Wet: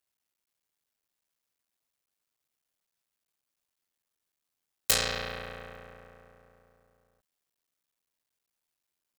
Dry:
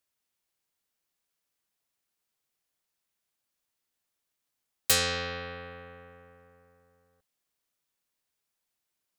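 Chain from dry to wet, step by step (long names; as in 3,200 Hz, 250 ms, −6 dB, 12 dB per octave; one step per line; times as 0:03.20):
sub-harmonics by changed cycles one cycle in 3, muted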